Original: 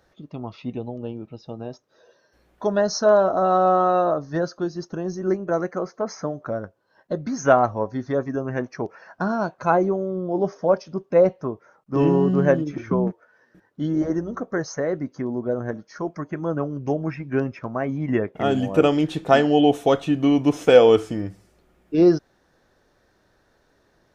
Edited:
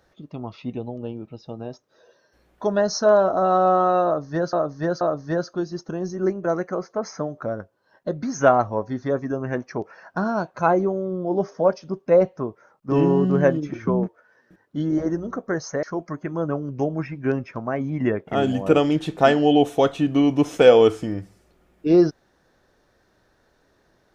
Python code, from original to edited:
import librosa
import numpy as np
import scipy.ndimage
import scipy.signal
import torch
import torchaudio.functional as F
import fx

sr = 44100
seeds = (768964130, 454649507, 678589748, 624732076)

y = fx.edit(x, sr, fx.repeat(start_s=4.05, length_s=0.48, count=3),
    fx.cut(start_s=14.87, length_s=1.04), tone=tone)